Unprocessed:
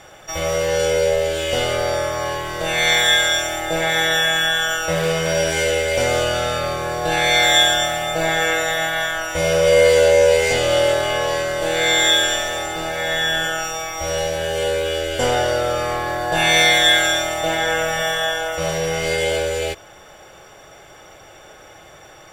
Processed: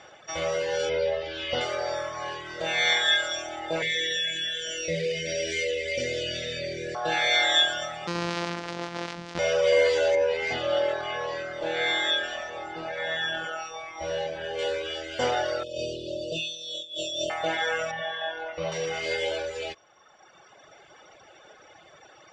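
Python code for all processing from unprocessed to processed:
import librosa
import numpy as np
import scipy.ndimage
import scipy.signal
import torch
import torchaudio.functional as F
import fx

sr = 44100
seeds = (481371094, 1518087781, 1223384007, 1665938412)

y = fx.chain(x, sr, fx.lowpass(hz=5200.0, slope=24),
    fx.low_shelf(hz=78.0, db=7.0), at=(0.89, 1.61))
y = fx.chain(y, sr, fx.cheby1_bandstop(low_hz=530.0, high_hz=1900.0, order=3),
    fx.env_flatten(amount_pct=50), at=(3.82, 6.95))
y = fx.chain(y, sr, fx.sample_sort(block=256),
    fx.low_shelf(hz=200.0, db=-5.5),
    fx.env_flatten(amount_pct=50), at=(8.07, 9.39))
y = fx.chain(y, sr, fx.high_shelf(hz=5000.0, db=-11.0),
    fx.resample_bad(factor=2, down='none', up='hold'), at=(10.15, 14.59))
y = fx.chain(y, sr, fx.brickwall_bandstop(low_hz=650.0, high_hz=2500.0),
    fx.over_compress(threshold_db=-24.0, ratio=-1.0), at=(15.63, 17.3))
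y = fx.chain(y, sr, fx.air_absorb(metres=190.0),
    fx.notch(hz=1300.0, q=29.0), at=(17.91, 18.72))
y = fx.highpass(y, sr, hz=220.0, slope=6)
y = fx.dereverb_blind(y, sr, rt60_s=1.6)
y = scipy.signal.sosfilt(scipy.signal.butter(4, 5800.0, 'lowpass', fs=sr, output='sos'), y)
y = F.gain(torch.from_numpy(y), -4.5).numpy()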